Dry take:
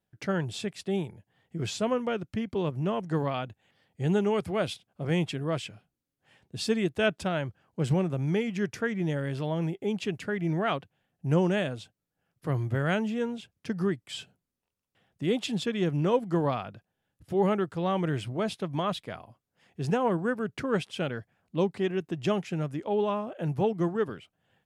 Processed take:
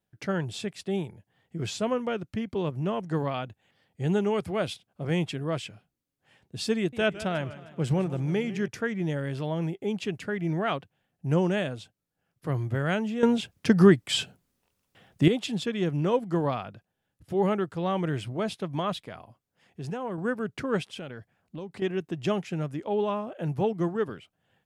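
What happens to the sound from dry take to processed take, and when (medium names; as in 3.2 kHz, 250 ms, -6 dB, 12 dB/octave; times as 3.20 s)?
6.77–8.68 s: modulated delay 154 ms, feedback 52%, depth 152 cents, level -15 dB
13.23–15.28 s: gain +11.5 dB
18.97–20.18 s: compression 2:1, threshold -36 dBFS
20.86–21.82 s: compression, threshold -35 dBFS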